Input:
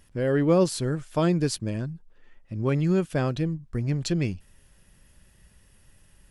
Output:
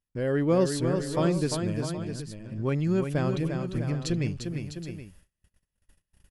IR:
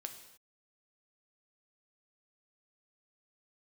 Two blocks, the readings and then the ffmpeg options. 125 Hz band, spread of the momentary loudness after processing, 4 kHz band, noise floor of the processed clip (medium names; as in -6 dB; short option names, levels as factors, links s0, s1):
-1.5 dB, 13 LU, -1.5 dB, under -85 dBFS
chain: -af "aecho=1:1:349|653|772:0.501|0.316|0.2,agate=range=0.0398:threshold=0.00316:ratio=16:detection=peak,volume=0.708"